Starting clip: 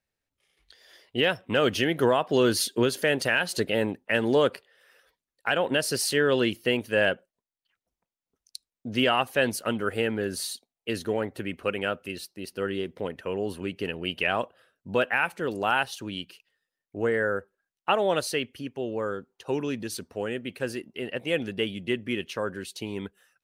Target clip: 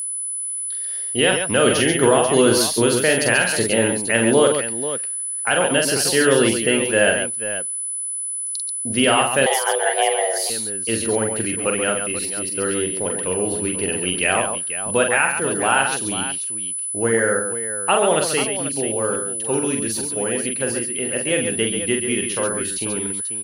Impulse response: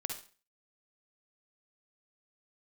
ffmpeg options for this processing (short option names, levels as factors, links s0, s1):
-filter_complex "[0:a]aecho=1:1:44|123|137|489:0.596|0.133|0.447|0.282,asettb=1/sr,asplit=3[s0][s1][s2];[s0]atrim=end=9.464[s3];[s1]atrim=start=9.46:end=10.5,asetpts=PTS-STARTPTS,afade=t=in:d=0.004:c=qsin,afade=t=out:st=1.036:d=0.004:c=qsin,afreqshift=270[s4];[s2]atrim=start=10.496[s5];[s3][s4]acrossfade=d=0.004:c1=hsin:c2=qsin[s6];[s6][s5]acrossfade=d=0.004:c1=qsin:c2=hsin,aeval=exprs='val(0)+0.0355*sin(2*PI*10000*n/s)':c=same,volume=1.78"